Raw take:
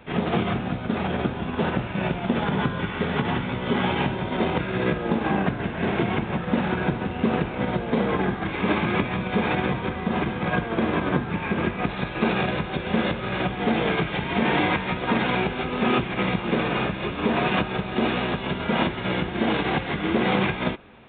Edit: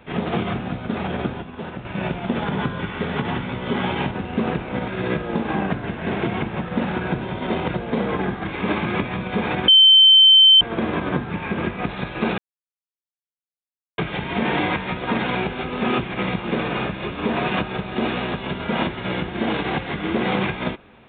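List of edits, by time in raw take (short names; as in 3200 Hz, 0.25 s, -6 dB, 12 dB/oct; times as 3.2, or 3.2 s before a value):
1.42–1.85 gain -8 dB
4.11–4.64 swap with 6.97–7.74
9.68–10.61 bleep 3090 Hz -7.5 dBFS
12.38–13.98 mute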